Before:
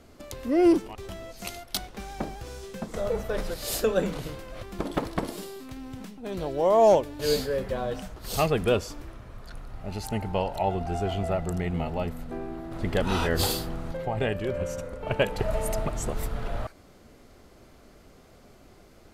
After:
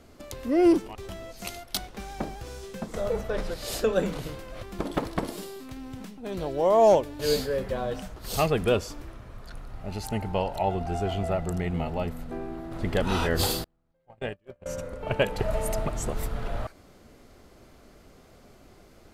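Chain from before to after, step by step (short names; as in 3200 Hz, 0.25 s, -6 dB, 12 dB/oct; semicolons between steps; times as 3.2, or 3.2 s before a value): 3.21–3.93 high shelf 10000 Hz -11 dB; 13.64–14.66 gate -24 dBFS, range -39 dB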